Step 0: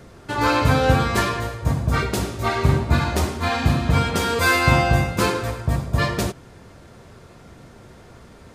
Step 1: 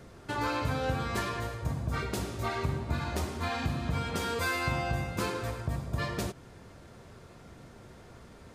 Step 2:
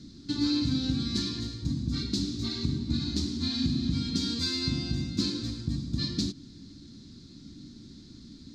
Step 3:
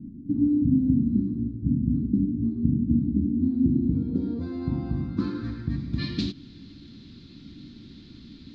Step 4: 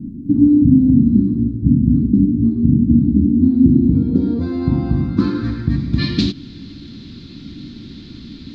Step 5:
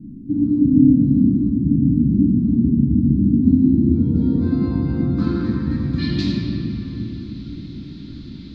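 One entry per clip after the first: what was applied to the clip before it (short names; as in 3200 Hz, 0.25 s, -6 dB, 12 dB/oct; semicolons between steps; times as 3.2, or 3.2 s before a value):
compressor 2.5:1, threshold -25 dBFS, peak gain reduction 10 dB; gain -6 dB
EQ curve 120 Hz 0 dB, 290 Hz +12 dB, 440 Hz -15 dB, 650 Hz -23 dB, 2900 Hz -6 dB, 4100 Hz +15 dB, 7200 Hz +1 dB, 11000 Hz -17 dB
low-pass sweep 240 Hz -> 2900 Hz, 3.23–6.27; gain +2.5 dB
maximiser +12 dB; gain -1 dB
reverb RT60 3.8 s, pre-delay 6 ms, DRR -3 dB; gain -8.5 dB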